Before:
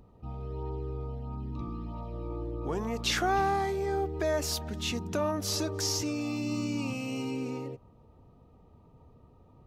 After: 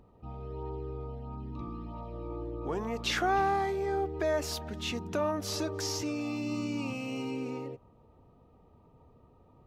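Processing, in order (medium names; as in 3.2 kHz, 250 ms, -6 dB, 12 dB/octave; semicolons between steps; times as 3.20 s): tone controls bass -4 dB, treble -6 dB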